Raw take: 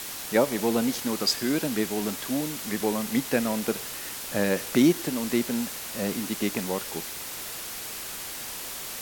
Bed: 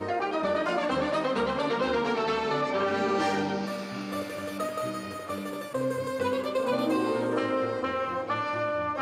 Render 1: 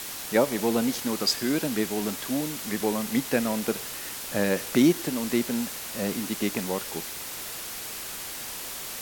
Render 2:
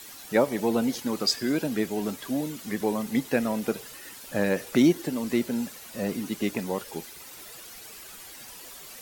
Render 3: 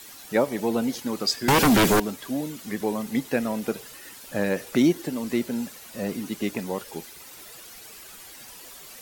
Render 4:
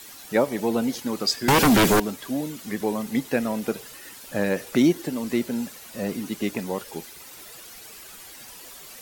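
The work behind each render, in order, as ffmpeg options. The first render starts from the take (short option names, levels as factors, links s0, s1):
-af anull
-af "afftdn=nr=11:nf=-37"
-filter_complex "[0:a]asettb=1/sr,asplit=3[s0][s1][s2];[s0]atrim=end=1.484[s3];[s1]atrim=start=1.48:end=2,asetpts=PTS-STARTPTS,afade=t=in:d=0.004:c=qsin,afade=t=out:st=0.516:d=0.004:c=qsin,aeval=exprs='0.2*sin(PI/2*5.01*val(0)/0.2)':c=same[s4];[s2]atrim=start=1.996[s5];[s3][s4]acrossfade=d=0.004:c1=hsin:c2=qsin[s6];[s6][s5]acrossfade=d=0.004:c1=qsin:c2=hsin"
-af "volume=1.12"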